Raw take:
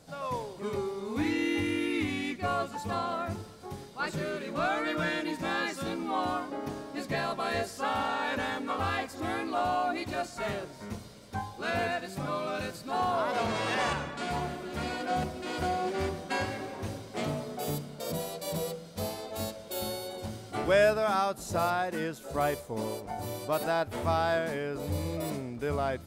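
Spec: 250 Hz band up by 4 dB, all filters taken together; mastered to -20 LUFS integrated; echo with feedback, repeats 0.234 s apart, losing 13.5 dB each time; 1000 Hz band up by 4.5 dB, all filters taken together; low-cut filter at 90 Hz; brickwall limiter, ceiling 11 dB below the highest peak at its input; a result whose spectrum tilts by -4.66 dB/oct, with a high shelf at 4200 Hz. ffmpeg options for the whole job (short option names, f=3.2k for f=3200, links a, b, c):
-af "highpass=90,equalizer=f=250:t=o:g=5,equalizer=f=1k:t=o:g=6.5,highshelf=f=4.2k:g=-8.5,alimiter=limit=-22dB:level=0:latency=1,aecho=1:1:234|468:0.211|0.0444,volume=12dB"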